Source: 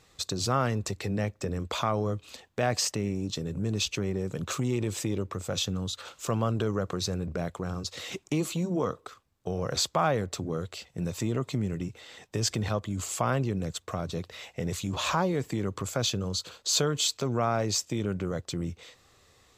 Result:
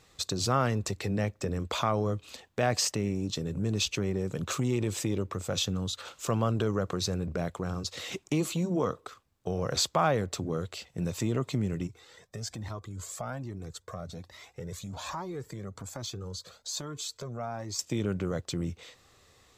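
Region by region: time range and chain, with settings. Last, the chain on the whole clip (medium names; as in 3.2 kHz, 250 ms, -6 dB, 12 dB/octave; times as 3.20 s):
11.87–17.79 s: peaking EQ 2.8 kHz -8.5 dB 0.5 oct + compression 1.5:1, threshold -36 dBFS + Shepard-style flanger rising 1.2 Hz
whole clip: none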